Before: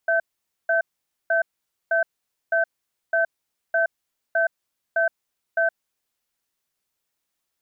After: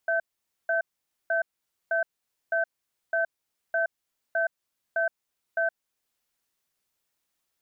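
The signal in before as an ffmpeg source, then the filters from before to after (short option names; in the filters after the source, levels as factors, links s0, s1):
-f lavfi -i "aevalsrc='0.1*(sin(2*PI*664*t)+sin(2*PI*1540*t))*clip(min(mod(t,0.61),0.12-mod(t,0.61))/0.005,0,1)':d=5.98:s=44100"
-af "alimiter=limit=0.112:level=0:latency=1:release=484"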